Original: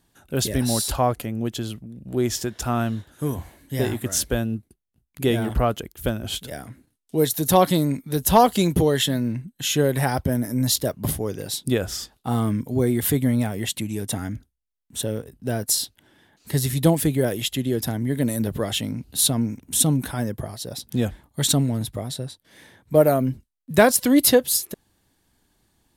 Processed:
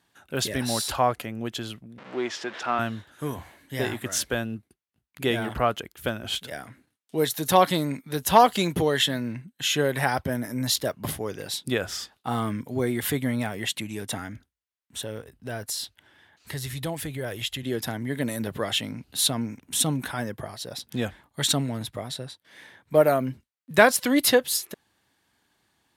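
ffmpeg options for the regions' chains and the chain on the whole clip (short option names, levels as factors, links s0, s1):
-filter_complex "[0:a]asettb=1/sr,asplit=3[s0][s1][s2];[s0]atrim=end=1.984[s3];[s1]atrim=start=1.98:end=2.79,asetpts=PTS-STARTPTS,afade=t=in:d=0.004:c=qsin,afade=t=out:st=0.806:d=0.004:c=qsin,aeval=exprs='val(0)+0.5*0.0224*sgn(val(0))':c=same,highpass=310,lowpass=3800[s4];[s2]atrim=start=2.786[s5];[s3][s4]acrossfade=d=0.004:c1=hsin:c2=qsin[s6];[s6][s5]acrossfade=d=0.004:c1=qsin:c2=hsin,asettb=1/sr,asplit=3[s7][s8][s9];[s7]atrim=end=14.194[s10];[s8]atrim=start=14.19:end=17.63,asetpts=PTS-STARTPTS,afade=t=in:d=0.004:c=qsin,afade=t=out:st=3.436:d=0.004:c=qsin,asubboost=boost=7:cutoff=89,acompressor=threshold=0.0447:ratio=2:attack=3.2:release=140:knee=1:detection=peak[s11];[s9]atrim=start=17.626[s12];[s10][s11]acrossfade=d=0.004:c1=hsin:c2=qsin[s13];[s13][s12]acrossfade=d=0.004:c1=qsin:c2=hsin,highpass=76,equalizer=f=1800:w=0.36:g=10.5,volume=0.422"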